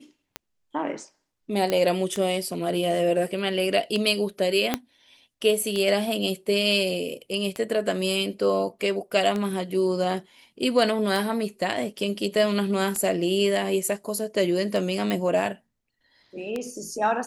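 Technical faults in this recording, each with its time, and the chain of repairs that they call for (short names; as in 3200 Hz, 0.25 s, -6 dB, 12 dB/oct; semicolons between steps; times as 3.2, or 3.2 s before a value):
tick 33 1/3 rpm -15 dBFS
1.7 pop -11 dBFS
4.74 pop -7 dBFS
15.1 pop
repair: de-click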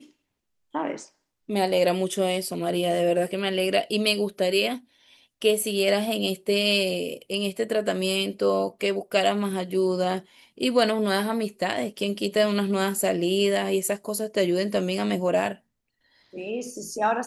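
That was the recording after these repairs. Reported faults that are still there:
4.74 pop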